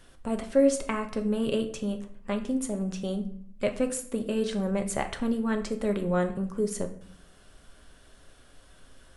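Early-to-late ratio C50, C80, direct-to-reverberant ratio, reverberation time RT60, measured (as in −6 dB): 11.5 dB, 15.5 dB, 5.0 dB, 0.60 s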